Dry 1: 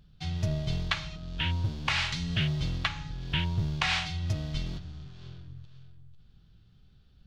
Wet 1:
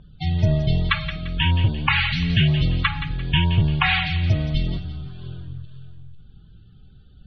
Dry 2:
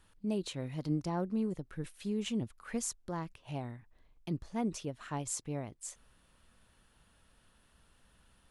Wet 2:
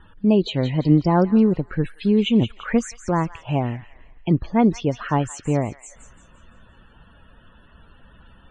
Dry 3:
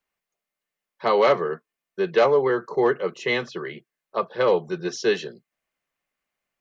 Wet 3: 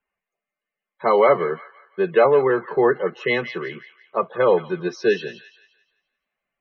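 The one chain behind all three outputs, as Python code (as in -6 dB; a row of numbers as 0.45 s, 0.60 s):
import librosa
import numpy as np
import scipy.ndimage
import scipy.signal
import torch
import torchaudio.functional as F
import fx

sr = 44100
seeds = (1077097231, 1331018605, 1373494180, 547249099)

y = fx.spec_topn(x, sr, count=64)
y = scipy.signal.sosfilt(scipy.signal.butter(2, 3500.0, 'lowpass', fs=sr, output='sos'), y)
y = fx.echo_wet_highpass(y, sr, ms=172, feedback_pct=38, hz=1800.0, wet_db=-9)
y = y * 10.0 ** (-22 / 20.0) / np.sqrt(np.mean(np.square(y)))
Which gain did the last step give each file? +11.0 dB, +17.5 dB, +3.0 dB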